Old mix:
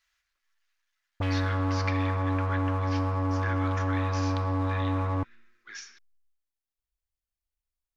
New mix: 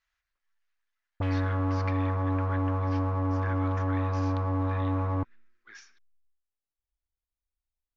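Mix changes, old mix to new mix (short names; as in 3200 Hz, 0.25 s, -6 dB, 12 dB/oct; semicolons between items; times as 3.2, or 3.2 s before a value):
speech: send -8.0 dB; master: add high shelf 2500 Hz -10.5 dB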